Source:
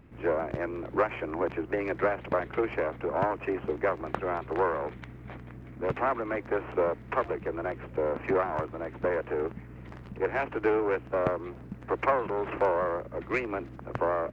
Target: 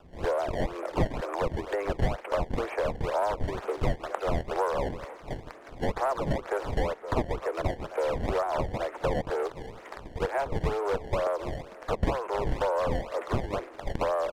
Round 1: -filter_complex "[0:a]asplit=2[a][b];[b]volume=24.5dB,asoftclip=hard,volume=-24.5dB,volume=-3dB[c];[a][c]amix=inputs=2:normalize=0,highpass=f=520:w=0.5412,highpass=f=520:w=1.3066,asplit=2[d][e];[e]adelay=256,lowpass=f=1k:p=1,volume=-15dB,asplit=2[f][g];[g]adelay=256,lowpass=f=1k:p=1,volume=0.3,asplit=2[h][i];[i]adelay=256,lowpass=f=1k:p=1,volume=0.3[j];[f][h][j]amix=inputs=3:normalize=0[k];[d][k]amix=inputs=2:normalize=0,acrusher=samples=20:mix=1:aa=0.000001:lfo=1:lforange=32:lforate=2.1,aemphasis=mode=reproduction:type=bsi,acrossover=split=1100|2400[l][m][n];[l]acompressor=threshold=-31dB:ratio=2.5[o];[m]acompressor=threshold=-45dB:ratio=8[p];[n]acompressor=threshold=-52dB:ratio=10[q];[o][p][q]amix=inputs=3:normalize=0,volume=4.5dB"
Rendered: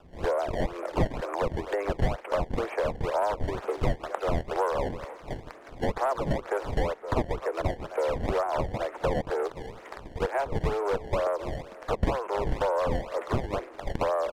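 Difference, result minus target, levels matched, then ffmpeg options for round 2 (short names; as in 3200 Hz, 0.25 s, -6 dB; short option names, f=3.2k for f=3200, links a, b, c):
overloaded stage: distortion -8 dB
-filter_complex "[0:a]asplit=2[a][b];[b]volume=34.5dB,asoftclip=hard,volume=-34.5dB,volume=-3dB[c];[a][c]amix=inputs=2:normalize=0,highpass=f=520:w=0.5412,highpass=f=520:w=1.3066,asplit=2[d][e];[e]adelay=256,lowpass=f=1k:p=1,volume=-15dB,asplit=2[f][g];[g]adelay=256,lowpass=f=1k:p=1,volume=0.3,asplit=2[h][i];[i]adelay=256,lowpass=f=1k:p=1,volume=0.3[j];[f][h][j]amix=inputs=3:normalize=0[k];[d][k]amix=inputs=2:normalize=0,acrusher=samples=20:mix=1:aa=0.000001:lfo=1:lforange=32:lforate=2.1,aemphasis=mode=reproduction:type=bsi,acrossover=split=1100|2400[l][m][n];[l]acompressor=threshold=-31dB:ratio=2.5[o];[m]acompressor=threshold=-45dB:ratio=8[p];[n]acompressor=threshold=-52dB:ratio=10[q];[o][p][q]amix=inputs=3:normalize=0,volume=4.5dB"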